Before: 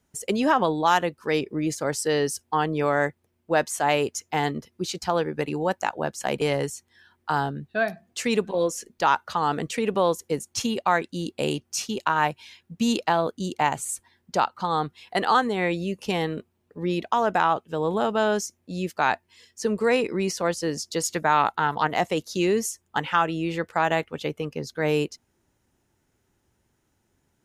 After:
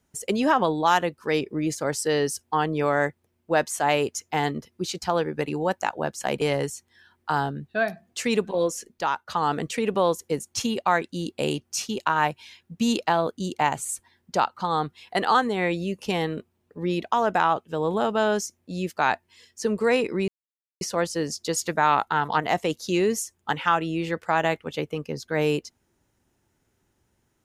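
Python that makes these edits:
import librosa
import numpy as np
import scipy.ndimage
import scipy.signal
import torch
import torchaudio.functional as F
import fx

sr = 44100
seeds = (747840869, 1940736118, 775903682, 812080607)

y = fx.edit(x, sr, fx.fade_out_to(start_s=8.73, length_s=0.55, floor_db=-9.5),
    fx.insert_silence(at_s=20.28, length_s=0.53), tone=tone)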